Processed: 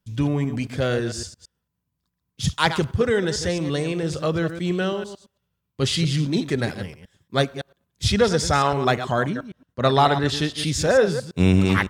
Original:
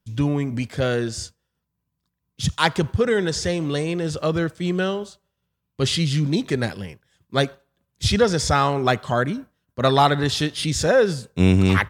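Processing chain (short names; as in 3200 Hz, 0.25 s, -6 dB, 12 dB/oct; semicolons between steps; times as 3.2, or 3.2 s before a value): reverse delay 0.112 s, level -10 dB; 9.29–10.58 high shelf 8500 Hz -7.5 dB; gain -1 dB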